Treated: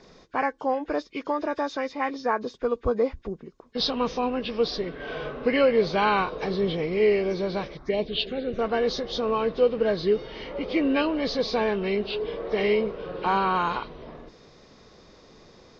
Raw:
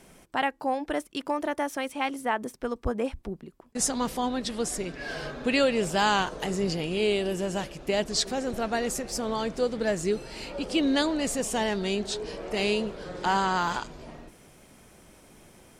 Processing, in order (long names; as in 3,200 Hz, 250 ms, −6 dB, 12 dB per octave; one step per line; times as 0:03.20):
hearing-aid frequency compression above 1,400 Hz 1.5 to 1
0:07.77–0:08.59: phaser swept by the level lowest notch 430 Hz, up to 1,600 Hz, full sweep at −22 dBFS
hollow resonant body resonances 460/1,100/3,700 Hz, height 8 dB, ringing for 25 ms